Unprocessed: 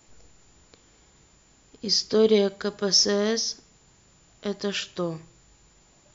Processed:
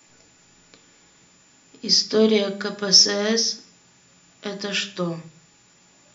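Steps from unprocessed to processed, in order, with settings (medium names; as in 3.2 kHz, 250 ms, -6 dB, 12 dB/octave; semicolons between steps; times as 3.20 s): hum notches 50/100/150/200 Hz; reverberation RT60 0.40 s, pre-delay 3 ms, DRR 5 dB; trim +2.5 dB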